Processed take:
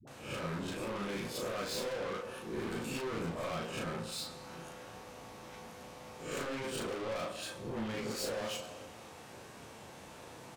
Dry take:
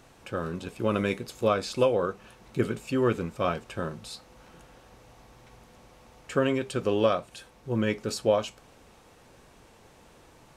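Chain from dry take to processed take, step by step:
peak hold with a rise ahead of every peak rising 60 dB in 0.39 s
high-pass filter 94 Hz 12 dB per octave
brickwall limiter −20.5 dBFS, peak gain reduction 11.5 dB
mains-hum notches 60/120/180/240/300/360/420/480/540 Hz
on a send at −16.5 dB: convolution reverb RT60 1.2 s, pre-delay 65 ms
on the sum: soft clipping −40 dBFS, distortion −4 dB
double-tracking delay 36 ms −4 dB
all-pass dispersion highs, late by 75 ms, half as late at 410 Hz
level +2.5 dB

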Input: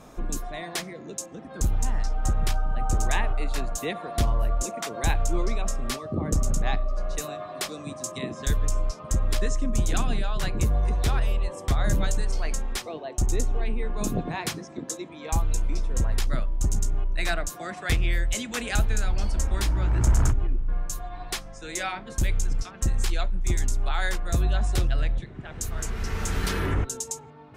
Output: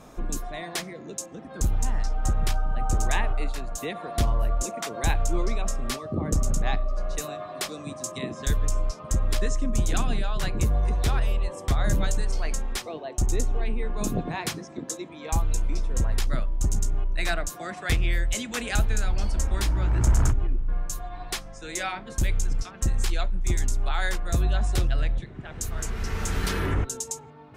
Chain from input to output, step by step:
0:03.50–0:04.09: downward compressor, threshold −27 dBFS, peak gain reduction 5.5 dB

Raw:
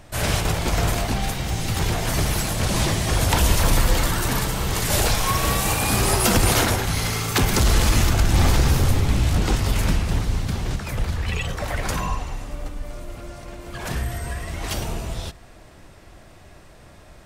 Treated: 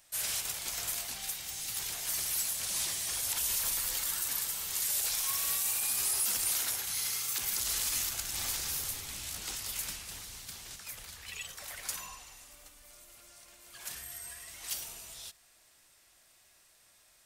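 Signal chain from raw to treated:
first-order pre-emphasis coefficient 0.97
brickwall limiter −17.5 dBFS, peak gain reduction 10 dB
level −3.5 dB

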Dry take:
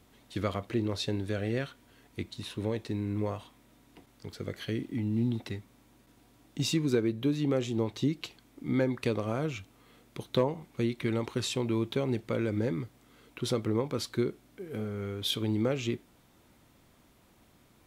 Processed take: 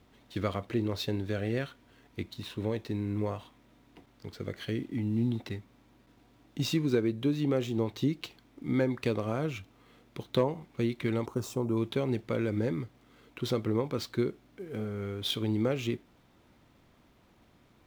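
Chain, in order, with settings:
running median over 5 samples
0:11.26–0:11.77: flat-topped bell 2,700 Hz −15 dB

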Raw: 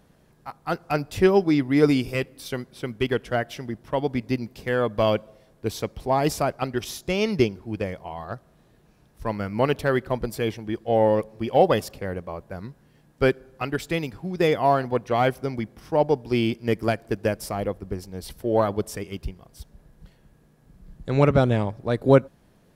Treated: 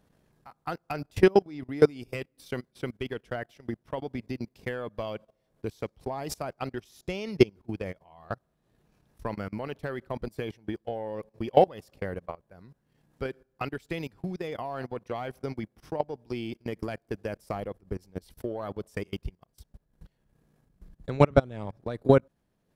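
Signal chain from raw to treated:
output level in coarse steps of 16 dB
transient designer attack +6 dB, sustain −8 dB
level −3 dB

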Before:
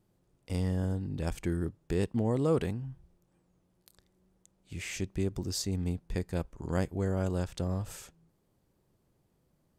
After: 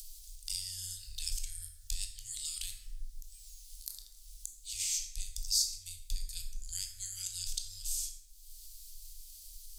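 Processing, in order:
inverse Chebyshev band-stop filter 150–880 Hz, stop band 80 dB
upward compression, threshold −34 dBFS
convolution reverb RT60 1.3 s, pre-delay 13 ms, DRR 2 dB
level +6 dB

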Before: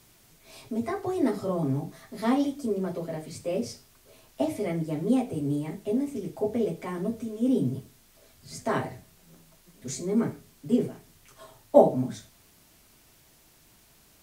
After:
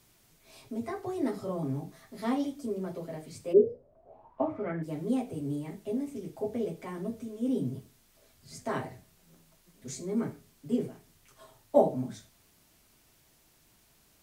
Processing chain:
0:03.52–0:04.82: low-pass with resonance 380 Hz → 1,700 Hz, resonance Q 13
level −5.5 dB

